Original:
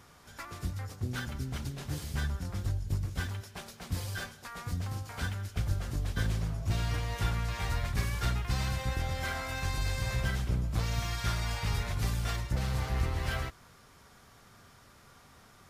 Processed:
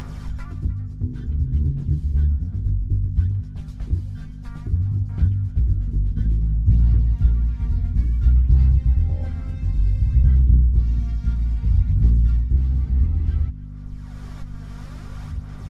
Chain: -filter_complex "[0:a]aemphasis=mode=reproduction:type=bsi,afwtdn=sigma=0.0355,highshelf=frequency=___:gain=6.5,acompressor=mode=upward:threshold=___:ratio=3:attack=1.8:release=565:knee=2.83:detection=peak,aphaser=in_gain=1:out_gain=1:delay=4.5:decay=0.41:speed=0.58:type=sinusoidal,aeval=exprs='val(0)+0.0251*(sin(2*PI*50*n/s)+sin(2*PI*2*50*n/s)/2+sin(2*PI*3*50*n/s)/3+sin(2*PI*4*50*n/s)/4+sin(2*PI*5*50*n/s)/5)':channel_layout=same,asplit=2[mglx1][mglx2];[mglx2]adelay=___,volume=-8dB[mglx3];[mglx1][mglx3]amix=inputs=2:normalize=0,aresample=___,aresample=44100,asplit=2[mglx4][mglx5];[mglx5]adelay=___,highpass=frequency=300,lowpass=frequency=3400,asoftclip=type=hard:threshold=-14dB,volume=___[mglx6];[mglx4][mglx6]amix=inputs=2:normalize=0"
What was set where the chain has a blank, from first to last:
5200, -20dB, 13, 32000, 300, -16dB